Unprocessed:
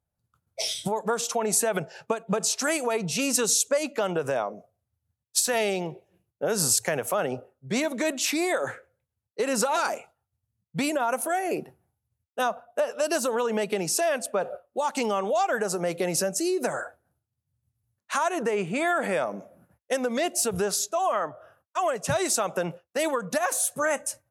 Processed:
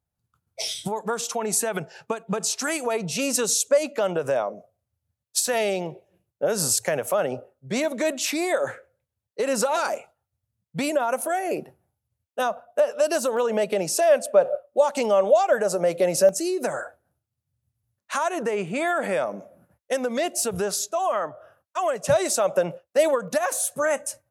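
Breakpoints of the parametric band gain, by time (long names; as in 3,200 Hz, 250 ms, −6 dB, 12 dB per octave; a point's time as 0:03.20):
parametric band 580 Hz 0.33 octaves
−4.5 dB
from 0:02.86 +6 dB
from 0:13.37 +13 dB
from 0:16.29 +3.5 dB
from 0:22.04 +11.5 dB
from 0:23.28 +4.5 dB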